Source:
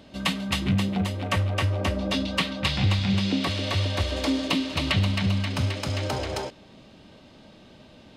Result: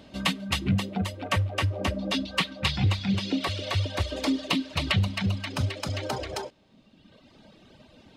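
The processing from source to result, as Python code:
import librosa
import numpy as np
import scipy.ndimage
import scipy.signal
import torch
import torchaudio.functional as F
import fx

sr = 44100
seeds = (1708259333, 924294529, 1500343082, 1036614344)

y = fx.dereverb_blind(x, sr, rt60_s=1.6)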